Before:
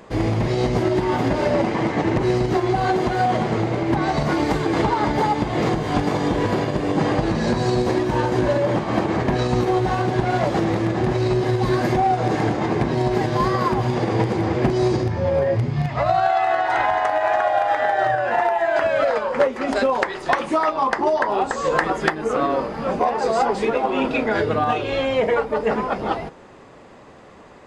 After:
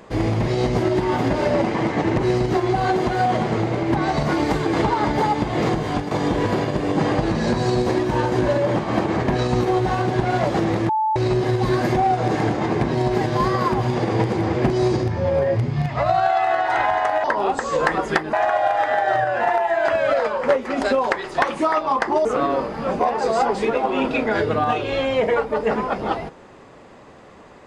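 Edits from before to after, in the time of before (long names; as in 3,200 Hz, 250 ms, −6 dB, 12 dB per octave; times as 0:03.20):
0:05.86–0:06.11: fade out, to −9 dB
0:10.89–0:11.16: beep over 872 Hz −17 dBFS
0:21.16–0:22.25: move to 0:17.24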